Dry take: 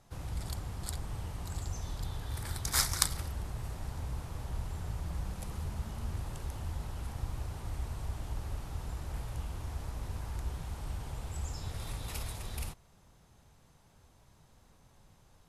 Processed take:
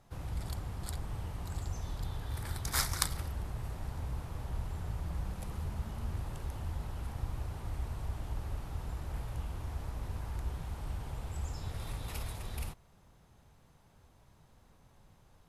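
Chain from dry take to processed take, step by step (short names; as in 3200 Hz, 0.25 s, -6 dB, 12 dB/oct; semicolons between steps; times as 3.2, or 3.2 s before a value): bell 7100 Hz -5 dB 1.8 oct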